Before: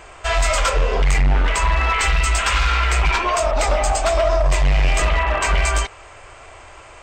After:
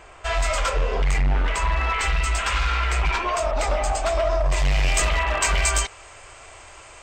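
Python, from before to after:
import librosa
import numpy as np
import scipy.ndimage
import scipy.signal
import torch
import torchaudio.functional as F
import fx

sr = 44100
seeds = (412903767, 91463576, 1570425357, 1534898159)

y = fx.high_shelf(x, sr, hz=3800.0, db=fx.steps((0.0, -2.5), (4.56, 10.5)))
y = y * 10.0 ** (-4.5 / 20.0)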